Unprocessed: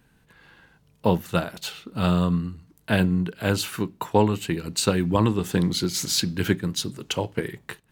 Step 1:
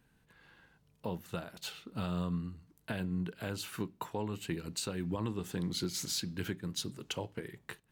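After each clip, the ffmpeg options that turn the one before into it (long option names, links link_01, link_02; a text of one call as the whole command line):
ffmpeg -i in.wav -af "alimiter=limit=-16dB:level=0:latency=1:release=325,volume=-8.5dB" out.wav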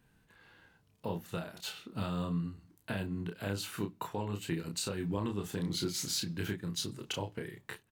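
ffmpeg -i in.wav -filter_complex "[0:a]asplit=2[link_01][link_02];[link_02]adelay=30,volume=-4.5dB[link_03];[link_01][link_03]amix=inputs=2:normalize=0" out.wav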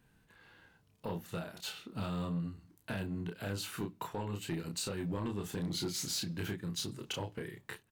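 ffmpeg -i in.wav -af "asoftclip=type=tanh:threshold=-29dB" out.wav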